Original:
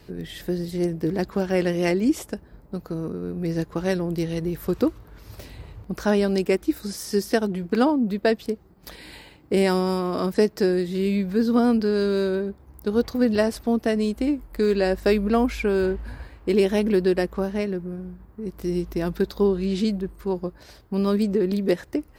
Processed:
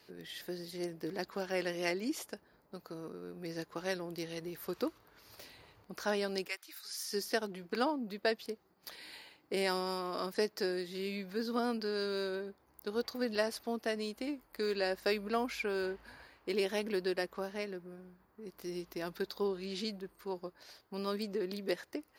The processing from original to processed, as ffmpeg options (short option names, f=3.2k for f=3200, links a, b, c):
-filter_complex "[0:a]asettb=1/sr,asplit=3[a][b][c];[a]atrim=end=6.484[d];[b]atrim=start=6.48:end=7.12,asetpts=PTS-STARTPTS,afade=t=in:d=0.004:c=qsin,afade=t=out:st=0.636:d=0.004:c=qsin,highpass=1.3k[e];[c]atrim=start=7.116[f];[d][e]acrossfade=d=0.004:c1=hsin:c2=qsin[g];[g][f]acrossfade=d=0.004:c1=qsin:c2=hsin,highpass=f=810:p=1,equalizer=f=4.6k:w=6.8:g=4.5,bandreject=f=7.9k:w=8.4,volume=-6.5dB"